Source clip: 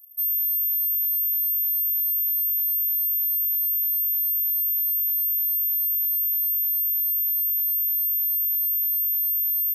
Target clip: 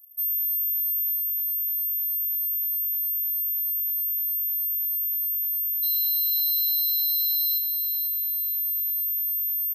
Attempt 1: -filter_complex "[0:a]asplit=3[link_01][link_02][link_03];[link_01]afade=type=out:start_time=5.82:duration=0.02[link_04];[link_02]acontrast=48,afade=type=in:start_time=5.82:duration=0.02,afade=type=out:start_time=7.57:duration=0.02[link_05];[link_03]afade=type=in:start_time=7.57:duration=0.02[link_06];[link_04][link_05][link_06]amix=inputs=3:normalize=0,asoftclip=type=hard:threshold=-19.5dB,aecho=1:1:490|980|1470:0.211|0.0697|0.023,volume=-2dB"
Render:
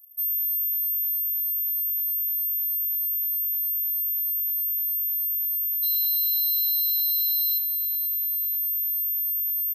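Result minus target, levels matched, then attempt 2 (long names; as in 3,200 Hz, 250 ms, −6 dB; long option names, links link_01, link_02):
echo-to-direct −6.5 dB
-filter_complex "[0:a]asplit=3[link_01][link_02][link_03];[link_01]afade=type=out:start_time=5.82:duration=0.02[link_04];[link_02]acontrast=48,afade=type=in:start_time=5.82:duration=0.02,afade=type=out:start_time=7.57:duration=0.02[link_05];[link_03]afade=type=in:start_time=7.57:duration=0.02[link_06];[link_04][link_05][link_06]amix=inputs=3:normalize=0,asoftclip=type=hard:threshold=-19.5dB,aecho=1:1:490|980|1470|1960:0.447|0.147|0.0486|0.0161,volume=-2dB"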